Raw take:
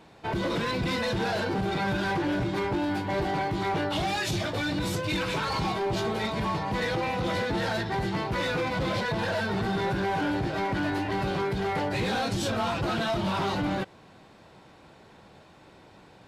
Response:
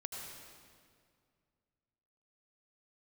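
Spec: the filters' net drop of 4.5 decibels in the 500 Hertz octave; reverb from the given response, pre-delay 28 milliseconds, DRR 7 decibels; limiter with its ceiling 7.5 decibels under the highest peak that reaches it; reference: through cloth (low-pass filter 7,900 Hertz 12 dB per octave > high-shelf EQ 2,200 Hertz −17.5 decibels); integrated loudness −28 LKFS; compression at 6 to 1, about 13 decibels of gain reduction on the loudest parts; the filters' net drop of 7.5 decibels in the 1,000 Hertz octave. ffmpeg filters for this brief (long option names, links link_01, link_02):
-filter_complex "[0:a]equalizer=frequency=500:width_type=o:gain=-3.5,equalizer=frequency=1000:width_type=o:gain=-5,acompressor=threshold=-41dB:ratio=6,alimiter=level_in=14.5dB:limit=-24dB:level=0:latency=1,volume=-14.5dB,asplit=2[link_01][link_02];[1:a]atrim=start_sample=2205,adelay=28[link_03];[link_02][link_03]afir=irnorm=-1:irlink=0,volume=-6.5dB[link_04];[link_01][link_04]amix=inputs=2:normalize=0,lowpass=7900,highshelf=frequency=2200:gain=-17.5,volume=19dB"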